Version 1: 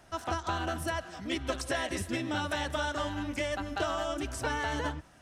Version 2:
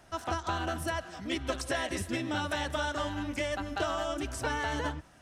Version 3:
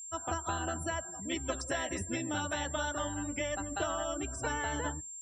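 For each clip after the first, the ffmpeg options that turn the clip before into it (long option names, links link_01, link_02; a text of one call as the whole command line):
ffmpeg -i in.wav -af anull out.wav
ffmpeg -i in.wav -af "afftdn=noise_reduction=33:noise_floor=-42,aeval=exprs='val(0)+0.01*sin(2*PI*7400*n/s)':channel_layout=same,volume=-2.5dB" out.wav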